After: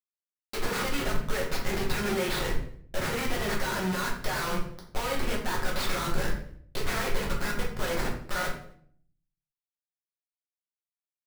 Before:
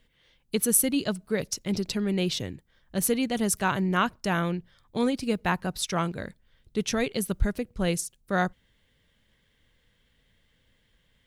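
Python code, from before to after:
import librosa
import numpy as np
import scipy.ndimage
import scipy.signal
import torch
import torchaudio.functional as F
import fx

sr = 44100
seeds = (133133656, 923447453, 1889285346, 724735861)

p1 = scipy.signal.medfilt(x, 15)
p2 = scipy.signal.sosfilt(scipy.signal.butter(2, 10000.0, 'lowpass', fs=sr, output='sos'), p1)
p3 = fx.env_lowpass_down(p2, sr, base_hz=2400.0, full_db=-27.0)
p4 = scipy.signal.sosfilt(scipy.signal.butter(2, 1300.0, 'highpass', fs=sr, output='sos'), p3)
p5 = fx.high_shelf(p4, sr, hz=5800.0, db=10.0)
p6 = fx.over_compress(p5, sr, threshold_db=-42.0, ratio=-0.5)
p7 = p5 + (p6 * librosa.db_to_amplitude(-0.5))
p8 = fx.schmitt(p7, sr, flips_db=-46.0)
p9 = p8 + fx.echo_feedback(p8, sr, ms=85, feedback_pct=44, wet_db=-21.0, dry=0)
p10 = fx.room_shoebox(p9, sr, seeds[0], volume_m3=73.0, walls='mixed', distance_m=0.99)
y = p10 * librosa.db_to_amplitude(5.5)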